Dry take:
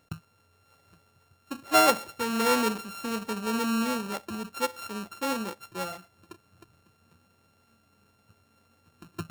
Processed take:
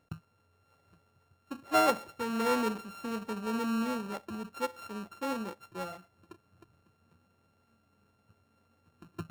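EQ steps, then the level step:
high-shelf EQ 2,500 Hz −8 dB
−3.5 dB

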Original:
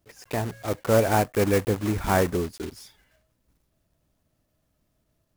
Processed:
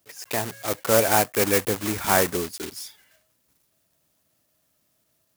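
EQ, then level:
high-pass filter 73 Hz
spectral tilt +2.5 dB per octave
+2.5 dB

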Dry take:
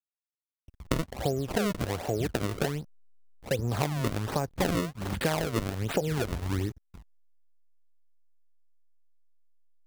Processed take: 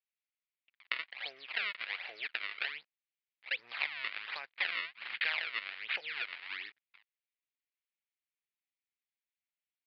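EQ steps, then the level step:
high-pass with resonance 2,200 Hz, resonance Q 2.8
Butterworth low-pass 4,700 Hz 72 dB per octave
high-frequency loss of the air 140 metres
0.0 dB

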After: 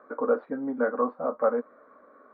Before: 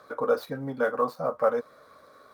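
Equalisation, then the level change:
low-pass filter 1,800 Hz 24 dB per octave
low shelf with overshoot 180 Hz −9.5 dB, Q 3
−1.5 dB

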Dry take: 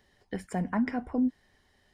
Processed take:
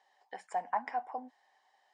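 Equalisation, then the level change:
high-pass with resonance 800 Hz, resonance Q 4.9
Chebyshev low-pass filter 7,900 Hz, order 3
notch filter 1,400 Hz, Q 13
−6.0 dB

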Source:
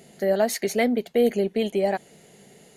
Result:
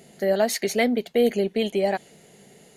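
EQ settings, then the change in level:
dynamic equaliser 3,600 Hz, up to +4 dB, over −45 dBFS, Q 0.8
0.0 dB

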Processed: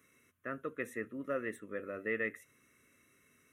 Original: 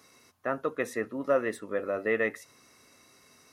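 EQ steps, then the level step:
phaser with its sweep stopped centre 2,000 Hz, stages 4
−5.5 dB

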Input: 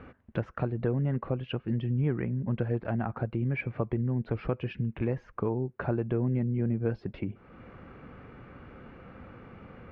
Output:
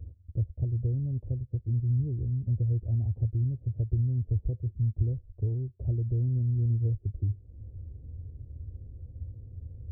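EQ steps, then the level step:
Gaussian smoothing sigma 21 samples
low shelf with overshoot 130 Hz +13 dB, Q 3
−4.5 dB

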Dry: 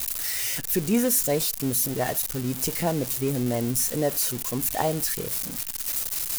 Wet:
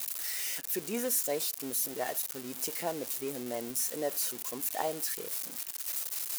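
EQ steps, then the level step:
high-pass filter 350 Hz 12 dB per octave
−7.0 dB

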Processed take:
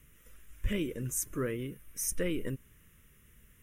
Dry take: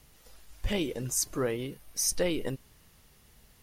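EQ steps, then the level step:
dynamic equaliser 2,800 Hz, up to −3 dB, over −49 dBFS, Q 0.77
phaser with its sweep stopped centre 1,900 Hz, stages 4
0.0 dB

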